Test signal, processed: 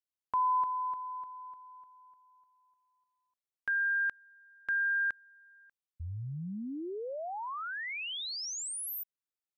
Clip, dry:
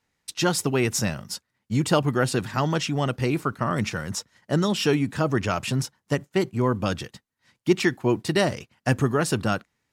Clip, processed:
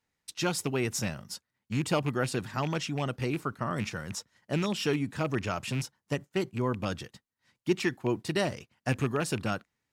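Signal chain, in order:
loose part that buzzes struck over −23 dBFS, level −21 dBFS
level −7 dB

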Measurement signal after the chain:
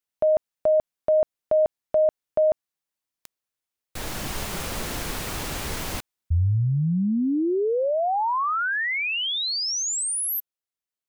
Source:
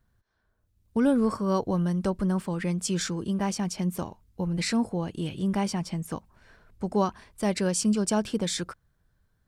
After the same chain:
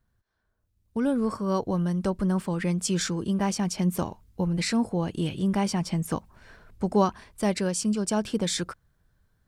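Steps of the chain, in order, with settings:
speech leveller within 4 dB 0.5 s
level +1 dB

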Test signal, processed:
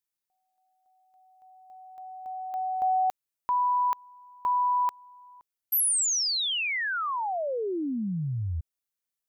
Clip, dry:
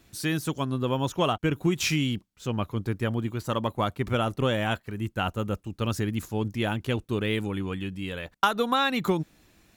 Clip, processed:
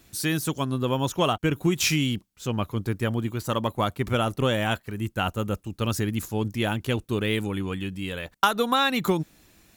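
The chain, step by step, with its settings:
high-shelf EQ 6,300 Hz +7 dB
level +1.5 dB

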